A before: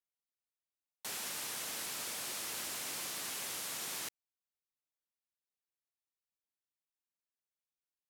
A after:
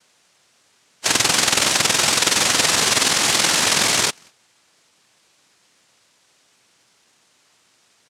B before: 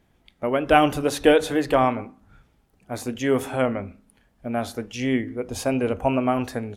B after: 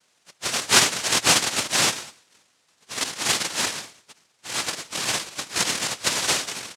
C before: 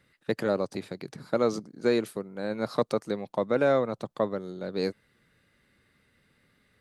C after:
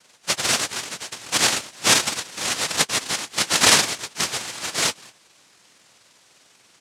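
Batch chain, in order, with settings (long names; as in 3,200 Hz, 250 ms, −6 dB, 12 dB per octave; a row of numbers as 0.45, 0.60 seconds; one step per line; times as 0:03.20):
frequency axis turned over on the octave scale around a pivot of 1,100 Hz
background noise violet −61 dBFS
far-end echo of a speakerphone 200 ms, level −22 dB
cochlear-implant simulation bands 1
normalise the peak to −1.5 dBFS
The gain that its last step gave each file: +13.5, +1.5, +10.5 decibels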